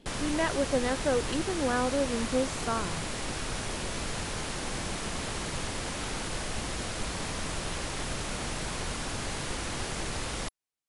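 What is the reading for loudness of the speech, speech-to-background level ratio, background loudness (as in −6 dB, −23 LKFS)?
−30.5 LKFS, 3.5 dB, −34.0 LKFS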